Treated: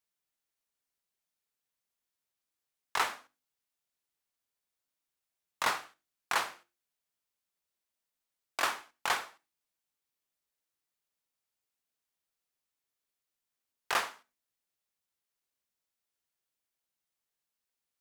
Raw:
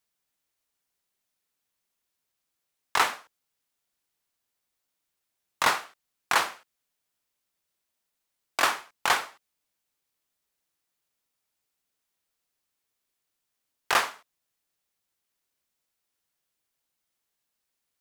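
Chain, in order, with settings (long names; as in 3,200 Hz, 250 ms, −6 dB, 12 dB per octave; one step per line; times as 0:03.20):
mains-hum notches 50/100/150/200/250/300/350 Hz
on a send: convolution reverb, pre-delay 3 ms, DRR 19 dB
on the sum: level −7 dB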